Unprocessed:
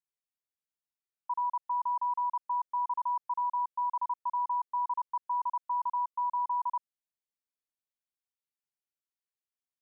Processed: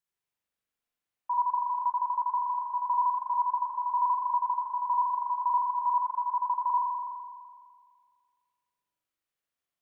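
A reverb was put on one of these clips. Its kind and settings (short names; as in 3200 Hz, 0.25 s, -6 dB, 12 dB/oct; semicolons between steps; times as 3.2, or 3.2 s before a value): spring tank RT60 1.9 s, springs 41 ms, chirp 70 ms, DRR -4 dB; gain +2.5 dB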